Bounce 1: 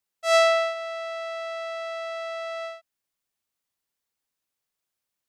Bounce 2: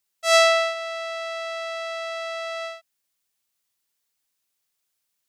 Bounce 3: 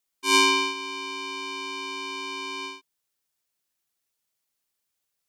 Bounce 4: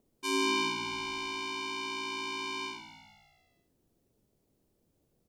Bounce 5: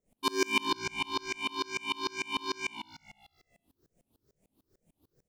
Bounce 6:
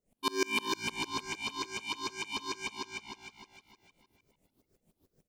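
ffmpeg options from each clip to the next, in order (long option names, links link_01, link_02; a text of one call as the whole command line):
ffmpeg -i in.wav -af "highshelf=frequency=2000:gain=8" out.wav
ffmpeg -i in.wav -af "aeval=exprs='val(0)*sin(2*PI*1700*n/s)':channel_layout=same" out.wav
ffmpeg -i in.wav -filter_complex "[0:a]acrossover=split=480[link_01][link_02];[link_01]acompressor=mode=upward:threshold=-47dB:ratio=2.5[link_03];[link_02]alimiter=limit=-17.5dB:level=0:latency=1:release=281[link_04];[link_03][link_04]amix=inputs=2:normalize=0,asplit=7[link_05][link_06][link_07][link_08][link_09][link_10][link_11];[link_06]adelay=150,afreqshift=-59,volume=-11.5dB[link_12];[link_07]adelay=300,afreqshift=-118,volume=-16.9dB[link_13];[link_08]adelay=450,afreqshift=-177,volume=-22.2dB[link_14];[link_09]adelay=600,afreqshift=-236,volume=-27.6dB[link_15];[link_10]adelay=750,afreqshift=-295,volume=-32.9dB[link_16];[link_11]adelay=900,afreqshift=-354,volume=-38.3dB[link_17];[link_05][link_12][link_13][link_14][link_15][link_16][link_17]amix=inputs=7:normalize=0,volume=-3.5dB" out.wav
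ffmpeg -i in.wav -af "afftfilt=real='re*pow(10,12/40*sin(2*PI*(0.54*log(max(b,1)*sr/1024/100)/log(2)-(2.3)*(pts-256)/sr)))':imag='im*pow(10,12/40*sin(2*PI*(0.54*log(max(b,1)*sr/1024/100)/log(2)-(2.3)*(pts-256)/sr)))':win_size=1024:overlap=0.75,asoftclip=type=tanh:threshold=-24dB,aeval=exprs='val(0)*pow(10,-29*if(lt(mod(-6.7*n/s,1),2*abs(-6.7)/1000),1-mod(-6.7*n/s,1)/(2*abs(-6.7)/1000),(mod(-6.7*n/s,1)-2*abs(-6.7)/1000)/(1-2*abs(-6.7)/1000))/20)':channel_layout=same,volume=8.5dB" out.wav
ffmpeg -i in.wav -af "aecho=1:1:308|616|924|1232|1540:0.631|0.246|0.096|0.0374|0.0146,volume=-2dB" out.wav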